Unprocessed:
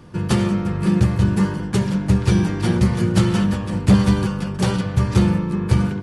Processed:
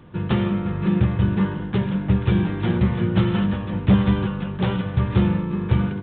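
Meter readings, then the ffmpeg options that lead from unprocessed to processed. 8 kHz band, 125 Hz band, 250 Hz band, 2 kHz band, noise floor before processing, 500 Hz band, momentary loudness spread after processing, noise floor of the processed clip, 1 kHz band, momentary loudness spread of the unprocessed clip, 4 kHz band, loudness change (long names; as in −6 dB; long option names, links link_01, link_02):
below −40 dB, −2.5 dB, −2.5 dB, −2.5 dB, −28 dBFS, −2.5 dB, 5 LU, −30 dBFS, −2.5 dB, 5 LU, −5.0 dB, −2.5 dB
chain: -af "volume=-2.5dB" -ar 8000 -c:a adpcm_g726 -b:a 32k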